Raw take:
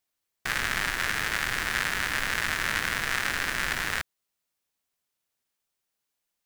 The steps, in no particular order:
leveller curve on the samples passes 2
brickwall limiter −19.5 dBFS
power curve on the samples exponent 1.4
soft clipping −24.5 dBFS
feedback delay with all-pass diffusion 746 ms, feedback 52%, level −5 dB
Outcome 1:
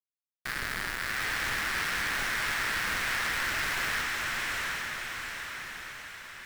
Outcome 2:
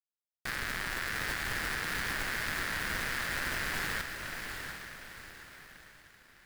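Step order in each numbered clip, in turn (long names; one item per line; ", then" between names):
power curve on the samples, then leveller curve on the samples, then feedback delay with all-pass diffusion, then soft clipping, then brickwall limiter
brickwall limiter, then leveller curve on the samples, then feedback delay with all-pass diffusion, then power curve on the samples, then soft clipping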